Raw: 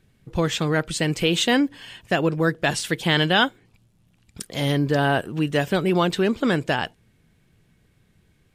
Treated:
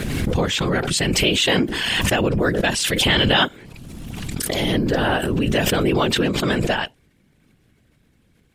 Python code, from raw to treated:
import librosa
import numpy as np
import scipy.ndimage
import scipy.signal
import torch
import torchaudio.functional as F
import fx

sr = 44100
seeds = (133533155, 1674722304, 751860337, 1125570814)

y = fx.whisperise(x, sr, seeds[0])
y = fx.dynamic_eq(y, sr, hz=2800.0, q=1.8, threshold_db=-36.0, ratio=4.0, max_db=4)
y = fx.pre_swell(y, sr, db_per_s=21.0)